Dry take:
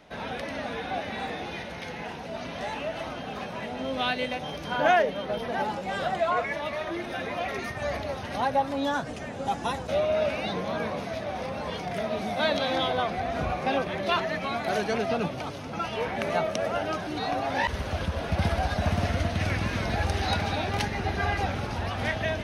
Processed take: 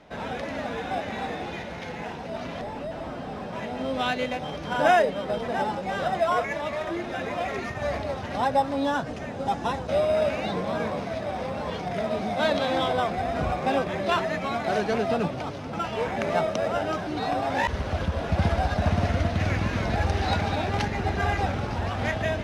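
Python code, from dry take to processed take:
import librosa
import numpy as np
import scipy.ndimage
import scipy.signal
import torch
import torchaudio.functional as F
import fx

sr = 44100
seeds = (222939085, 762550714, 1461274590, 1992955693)

p1 = fx.delta_mod(x, sr, bps=32000, step_db=-51.5, at=(2.61, 3.53))
p2 = fx.sample_hold(p1, sr, seeds[0], rate_hz=4400.0, jitter_pct=0)
p3 = p1 + (p2 * librosa.db_to_amplitude(-8.5))
y = fx.air_absorb(p3, sr, metres=57.0)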